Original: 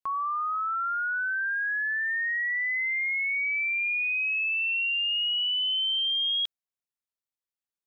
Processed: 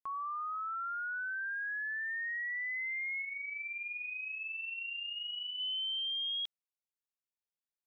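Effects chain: 3.22–5.60 s: flange 1.3 Hz, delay 7.1 ms, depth 3.7 ms, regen +53%; trim -9 dB

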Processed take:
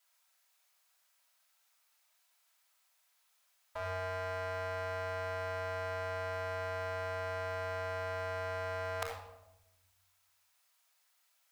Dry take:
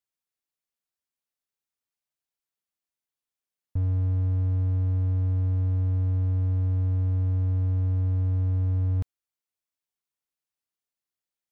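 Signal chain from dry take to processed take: inverse Chebyshev high-pass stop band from 330 Hz, stop band 40 dB; reverberation RT60 0.95 s, pre-delay 3 ms, DRR -10.5 dB; trim +8.5 dB

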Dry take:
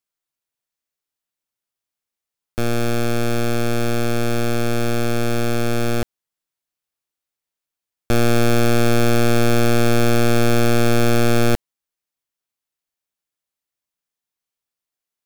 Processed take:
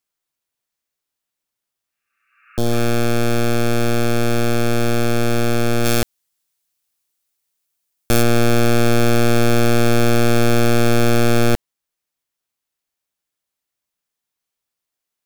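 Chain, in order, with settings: in parallel at -1 dB: peak limiter -21.5 dBFS, peak gain reduction 8 dB; 1.85–2.76 s: on the sum: spectral replace 1.1–2.9 kHz both; 5.84–8.21 s: treble shelf 2.7 kHz -> 5.2 kHz +10 dB; trim -1.5 dB

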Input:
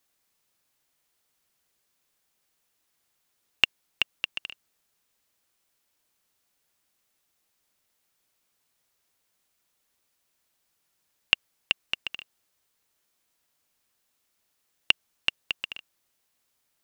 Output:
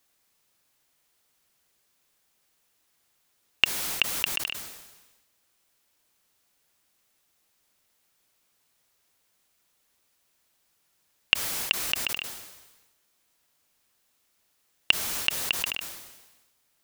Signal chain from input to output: in parallel at 0 dB: peak limiter -12.5 dBFS, peak gain reduction 11 dB; on the sum: decay stretcher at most 49 dB/s; trim -2 dB

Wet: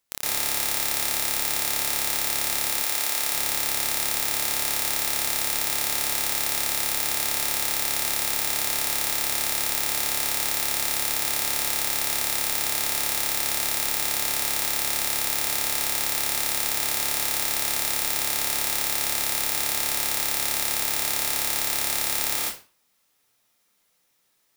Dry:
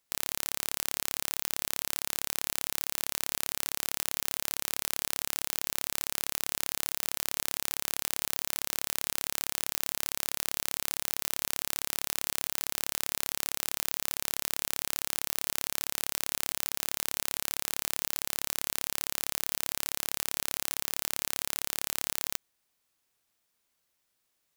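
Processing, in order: 2.67–3.22 s: high-pass 380 Hz 6 dB/octave; reverberation RT60 0.35 s, pre-delay 111 ms, DRR -8.5 dB

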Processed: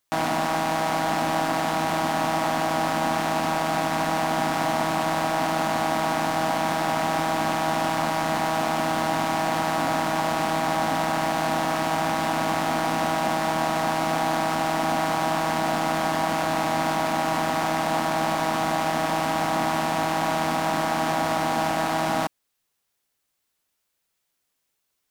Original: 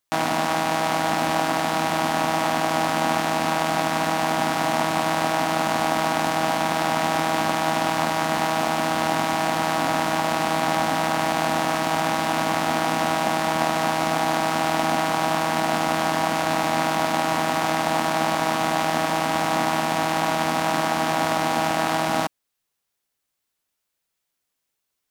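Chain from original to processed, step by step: in parallel at +3 dB: peak limiter -14 dBFS, peak gain reduction 8.5 dB; on the sum: saturation -8.5 dBFS, distortion -15 dB; trim -5 dB

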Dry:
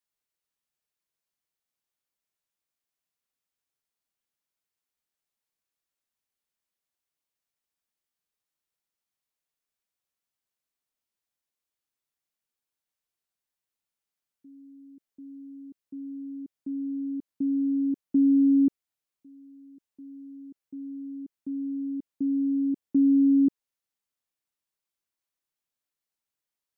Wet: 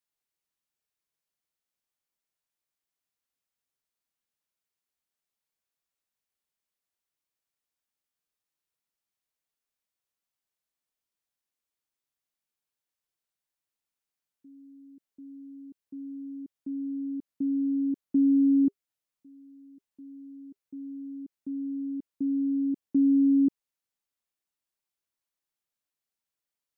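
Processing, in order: 18.64–20.62 s: band-stop 400 Hz, Q 12; trim -1.5 dB

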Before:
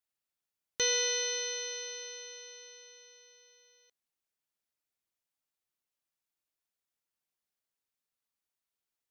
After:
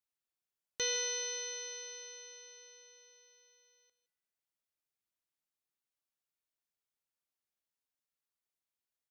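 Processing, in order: 2.57–3.10 s: bass shelf 160 Hz +11.5 dB; delay 164 ms -14.5 dB; spring tank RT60 1.3 s, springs 36 ms, chirp 50 ms, DRR 18.5 dB; trim -5 dB

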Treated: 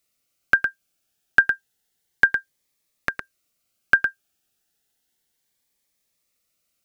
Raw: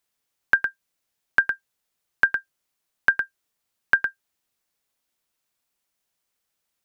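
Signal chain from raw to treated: band-stop 1 kHz, Q 5.4; Shepard-style phaser rising 0.31 Hz; trim +5 dB

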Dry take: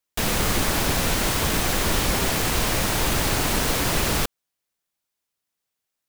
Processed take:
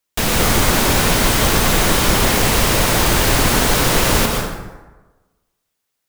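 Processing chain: plate-style reverb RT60 1.2 s, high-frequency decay 0.55×, pre-delay 105 ms, DRR 1.5 dB; trim +5.5 dB

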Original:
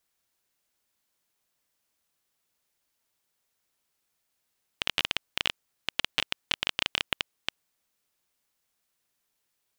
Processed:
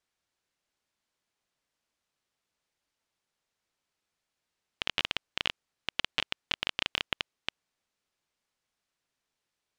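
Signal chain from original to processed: distance through air 65 m; trim -1.5 dB

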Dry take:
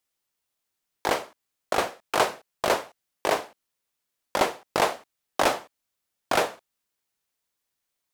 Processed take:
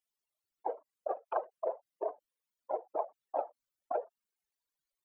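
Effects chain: spectral contrast enhancement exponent 3.8; granular stretch 0.62×, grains 39 ms; trim -8 dB

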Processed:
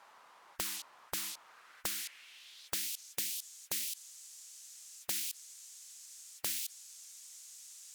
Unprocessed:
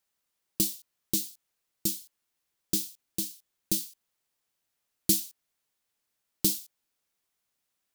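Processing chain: peak limiter -15.5 dBFS, peak gain reduction 7.5 dB; band-pass sweep 990 Hz -> 7 kHz, 1.39–3.15 s; spectrum-flattening compressor 10:1; trim +5.5 dB

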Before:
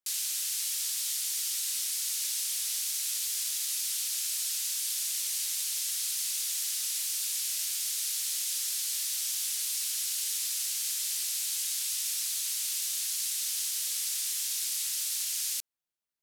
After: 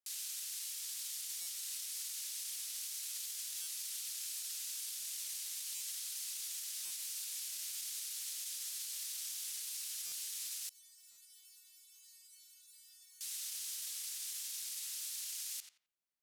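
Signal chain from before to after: tape echo 88 ms, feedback 32%, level -8 dB, low-pass 2.3 kHz; peak limiter -29 dBFS, peak gain reduction 9.5 dB; 10.69–13.21 s: inharmonic resonator 360 Hz, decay 0.61 s, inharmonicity 0.002; buffer glitch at 1.41/3.61/5.75/6.85/10.06/11.11 s, samples 256, times 9; trim -4.5 dB

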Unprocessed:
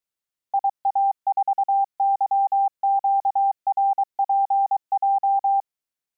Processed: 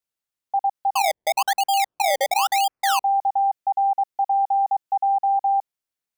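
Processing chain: 0.94–3.03 s: decimation with a swept rate 22×, swing 100% 1 Hz

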